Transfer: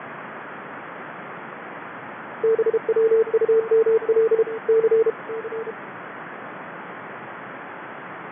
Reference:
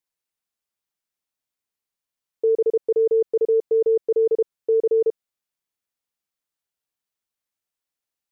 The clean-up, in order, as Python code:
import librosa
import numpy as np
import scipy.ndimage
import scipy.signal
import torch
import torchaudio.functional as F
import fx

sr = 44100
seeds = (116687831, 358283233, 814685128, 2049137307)

y = fx.noise_reduce(x, sr, print_start_s=7.56, print_end_s=8.06, reduce_db=30.0)
y = fx.fix_echo_inverse(y, sr, delay_ms=605, level_db=-11.5)